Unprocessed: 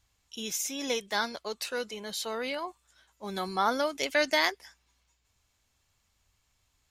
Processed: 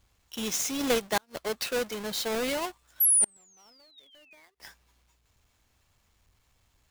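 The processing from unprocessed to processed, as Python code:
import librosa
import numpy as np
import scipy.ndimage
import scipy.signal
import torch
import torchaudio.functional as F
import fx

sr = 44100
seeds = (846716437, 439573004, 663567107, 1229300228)

y = fx.halfwave_hold(x, sr)
y = fx.spec_paint(y, sr, seeds[0], shape='fall', start_s=3.0, length_s=1.46, low_hz=2100.0, high_hz=12000.0, level_db=-21.0)
y = fx.gate_flip(y, sr, shuts_db=-16.0, range_db=-39)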